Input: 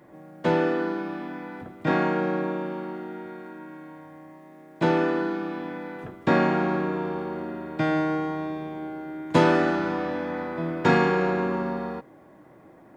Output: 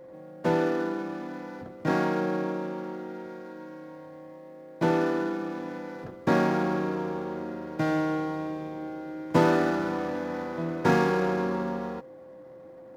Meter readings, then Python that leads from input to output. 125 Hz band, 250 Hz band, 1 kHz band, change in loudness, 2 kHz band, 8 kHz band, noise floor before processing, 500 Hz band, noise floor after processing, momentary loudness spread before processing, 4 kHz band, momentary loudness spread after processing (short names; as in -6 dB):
-2.0 dB, -2.0 dB, -2.5 dB, -2.5 dB, -4.0 dB, n/a, -51 dBFS, -2.0 dB, -47 dBFS, 16 LU, -3.5 dB, 21 LU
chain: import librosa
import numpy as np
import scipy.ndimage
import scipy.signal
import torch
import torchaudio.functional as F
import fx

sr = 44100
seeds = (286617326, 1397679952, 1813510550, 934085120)

y = scipy.ndimage.median_filter(x, 15, mode='constant')
y = y + 10.0 ** (-43.0 / 20.0) * np.sin(2.0 * np.pi * 520.0 * np.arange(len(y)) / sr)
y = y * 10.0 ** (-2.0 / 20.0)